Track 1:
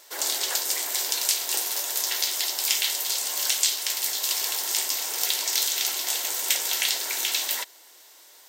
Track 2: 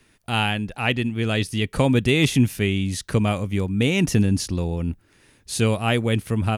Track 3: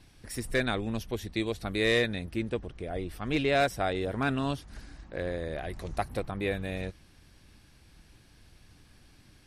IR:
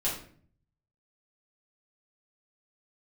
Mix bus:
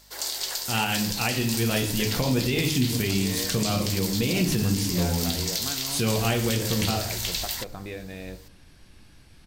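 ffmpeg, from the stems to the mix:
-filter_complex "[0:a]equalizer=frequency=4600:width=3.7:gain=6.5,aeval=exprs='val(0)+0.00224*(sin(2*PI*50*n/s)+sin(2*PI*2*50*n/s)/2+sin(2*PI*3*50*n/s)/3+sin(2*PI*4*50*n/s)/4+sin(2*PI*5*50*n/s)/5)':channel_layout=same,volume=-5dB[link_01];[1:a]adelay=400,volume=-7dB,asplit=2[link_02][link_03];[link_03]volume=-4dB[link_04];[2:a]acompressor=threshold=-37dB:ratio=10,adelay=1450,volume=2dB,asplit=2[link_05][link_06];[link_06]volume=-13dB[link_07];[3:a]atrim=start_sample=2205[link_08];[link_04][link_07]amix=inputs=2:normalize=0[link_09];[link_09][link_08]afir=irnorm=-1:irlink=0[link_10];[link_01][link_02][link_05][link_10]amix=inputs=4:normalize=0,alimiter=limit=-14dB:level=0:latency=1:release=95"

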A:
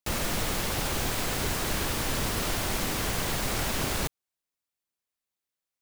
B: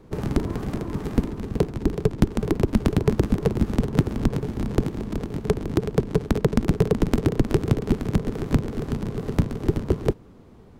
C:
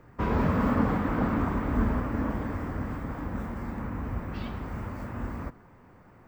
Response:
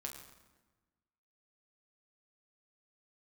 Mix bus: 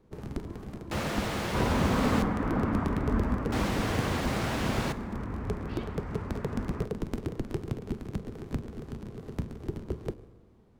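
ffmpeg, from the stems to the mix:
-filter_complex "[0:a]highpass=frequency=82:width=0.5412,highpass=frequency=82:width=1.3066,aemphasis=mode=reproduction:type=75kf,adelay=850,volume=-1.5dB,asplit=3[link_01][link_02][link_03];[link_01]atrim=end=2.22,asetpts=PTS-STARTPTS,afade=type=out:start_time=2.216:duration=0.004:curve=hsin[link_04];[link_02]atrim=start=2.22:end=3.52,asetpts=PTS-STARTPTS,volume=0[link_05];[link_03]atrim=start=3.52,asetpts=PTS-STARTPTS,afade=type=in:duration=0.004:curve=hsin[link_06];[link_04][link_05][link_06]concat=n=3:v=0:a=1,asplit=2[link_07][link_08];[link_08]volume=-5.5dB[link_09];[1:a]volume=-15.5dB,asplit=2[link_10][link_11];[link_11]volume=-4dB[link_12];[2:a]lowpass=6100,adelay=1350,volume=-2.5dB[link_13];[3:a]atrim=start_sample=2205[link_14];[link_09][link_12]amix=inputs=2:normalize=0[link_15];[link_15][link_14]afir=irnorm=-1:irlink=0[link_16];[link_07][link_10][link_13][link_16]amix=inputs=4:normalize=0"

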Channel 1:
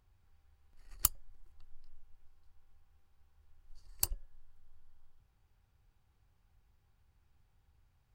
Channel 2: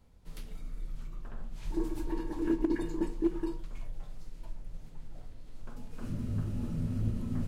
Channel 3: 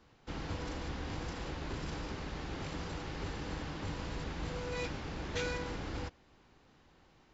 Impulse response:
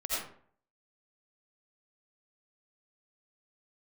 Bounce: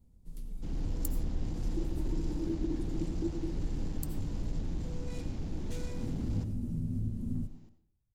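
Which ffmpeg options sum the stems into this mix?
-filter_complex "[0:a]volume=-12dB,asplit=2[link_01][link_02];[link_02]volume=-14.5dB[link_03];[1:a]acompressor=threshold=-36dB:ratio=2.5,volume=-1dB,asplit=2[link_04][link_05];[link_05]volume=-17dB[link_06];[2:a]asoftclip=type=tanh:threshold=-37.5dB,adelay=350,volume=1.5dB,asplit=2[link_07][link_08];[link_08]volume=-14.5dB[link_09];[3:a]atrim=start_sample=2205[link_10];[link_03][link_06][link_09]amix=inputs=3:normalize=0[link_11];[link_11][link_10]afir=irnorm=-1:irlink=0[link_12];[link_01][link_04][link_07][link_12]amix=inputs=4:normalize=0,firequalizer=gain_entry='entry(250,0);entry(470,-9);entry(1300,-19);entry(8000,-4)':delay=0.05:min_phase=1,dynaudnorm=framelen=410:gausssize=3:maxgain=4dB"

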